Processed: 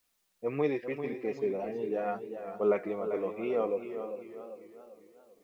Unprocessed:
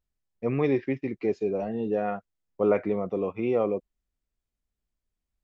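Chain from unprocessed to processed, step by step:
low-pass that shuts in the quiet parts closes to 560 Hz, open at −21.5 dBFS
bass and treble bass −10 dB, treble +2 dB
bit-depth reduction 12 bits, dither triangular
flanger 0.81 Hz, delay 3.8 ms, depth 3.1 ms, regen +51%
on a send: feedback echo with a low-pass in the loop 449 ms, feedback 36%, level −15 dB
on the sum: feedback echo with a swinging delay time 396 ms, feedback 44%, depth 97 cents, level −9 dB

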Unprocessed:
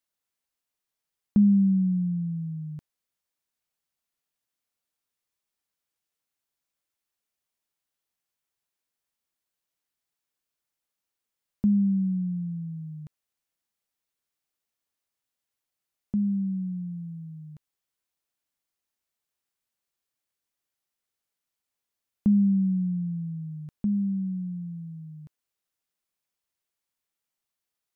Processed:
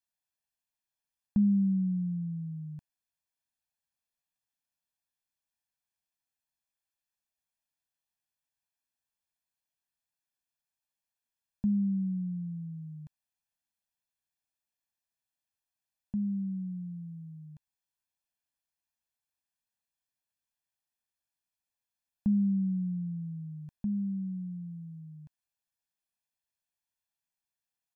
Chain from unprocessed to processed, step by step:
comb filter 1.2 ms, depth 71%
level −8 dB

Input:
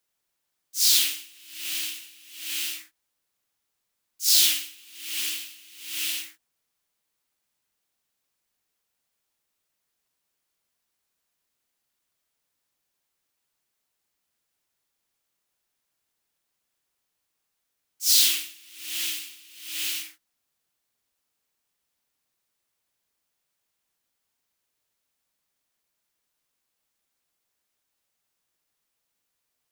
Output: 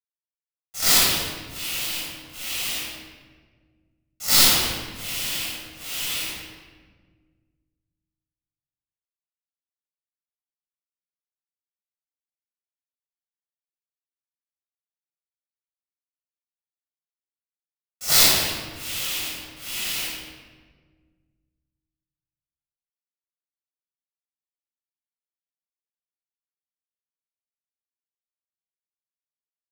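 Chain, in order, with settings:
parametric band 480 Hz +13 dB 0.8 octaves
log-companded quantiser 2 bits
convolution reverb RT60 1.5 s, pre-delay 13 ms, DRR −7.5 dB
level −10.5 dB

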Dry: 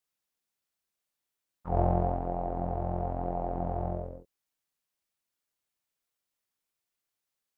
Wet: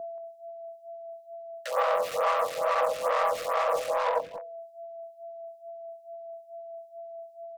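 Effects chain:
sub-octave generator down 1 octave, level −2 dB
comb filter 6 ms, depth 73%
in parallel at −5 dB: fuzz pedal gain 46 dB, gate −44 dBFS
on the sum: frequency shifter +460 Hz
brickwall limiter −15.5 dBFS, peak gain reduction 11.5 dB
mains-hum notches 50/100/150/200/250/300/350/400/450/500 Hz
steady tone 670 Hz −34 dBFS
far-end echo of a speakerphone 180 ms, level −9 dB
phaser with staggered stages 2.3 Hz

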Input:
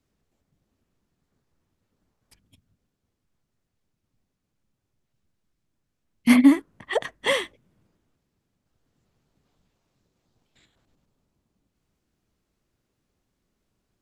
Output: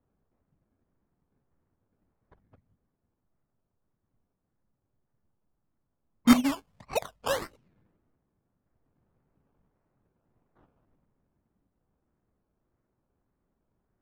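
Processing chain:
0:06.33–0:07.42: phaser with its sweep stopped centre 800 Hz, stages 4
sample-and-hold swept by an LFO 18×, swing 60% 1.7 Hz
low-pass that shuts in the quiet parts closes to 1,400 Hz, open at −31 dBFS
level −1.5 dB

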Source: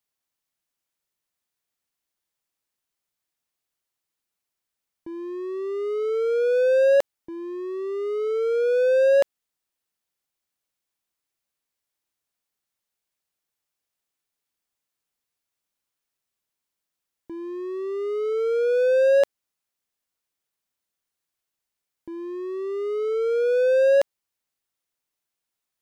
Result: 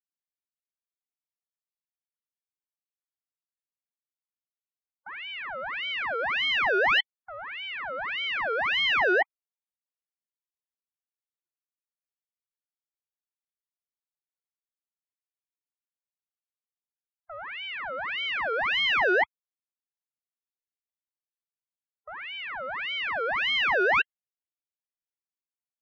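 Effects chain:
spectral peaks only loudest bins 16
low-pass that shuts in the quiet parts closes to 1,200 Hz, open at −17 dBFS
ring modulator whose carrier an LFO sweeps 1,800 Hz, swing 50%, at 1.7 Hz
level −2.5 dB

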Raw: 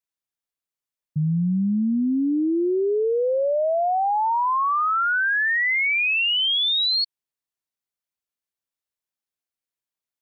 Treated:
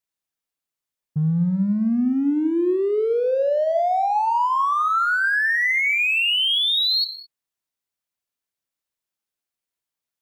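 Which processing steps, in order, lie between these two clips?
in parallel at −9.5 dB: hard clipping −32 dBFS, distortion −8 dB
on the sum: reverb whose tail is shaped and stops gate 230 ms flat, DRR 10.5 dB

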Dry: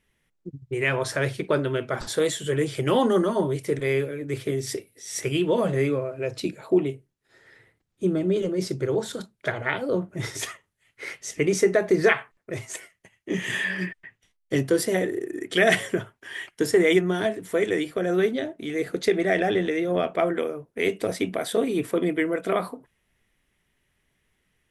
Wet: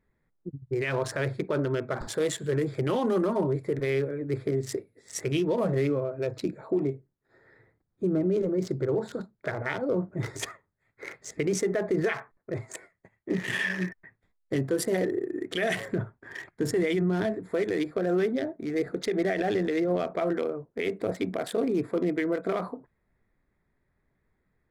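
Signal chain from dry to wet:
adaptive Wiener filter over 15 samples
0:15.88–0:17.35: bass and treble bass +7 dB, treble −1 dB
brickwall limiter −18.5 dBFS, peak gain reduction 12 dB

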